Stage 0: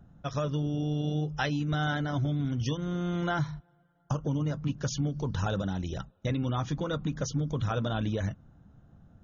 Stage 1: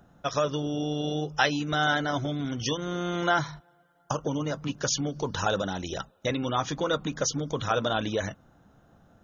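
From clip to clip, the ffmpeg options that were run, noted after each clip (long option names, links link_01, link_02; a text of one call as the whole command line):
ffmpeg -i in.wav -af "bass=frequency=250:gain=-14,treble=frequency=4000:gain=3,volume=7.5dB" out.wav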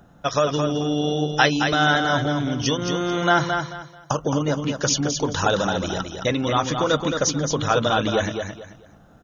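ffmpeg -i in.wav -af "aecho=1:1:219|438|657:0.501|0.13|0.0339,volume=6dB" out.wav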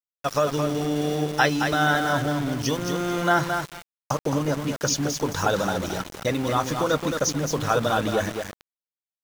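ffmpeg -i in.wav -af "equalizer=frequency=3200:width_type=o:width=0.64:gain=-6,aeval=exprs='val(0)*gte(abs(val(0)),0.0355)':channel_layout=same,volume=-2dB" out.wav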